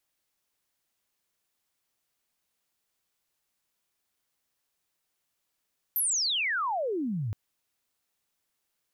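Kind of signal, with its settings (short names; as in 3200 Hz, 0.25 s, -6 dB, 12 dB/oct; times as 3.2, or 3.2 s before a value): chirp logarithmic 13000 Hz -> 96 Hz -24 dBFS -> -28.5 dBFS 1.37 s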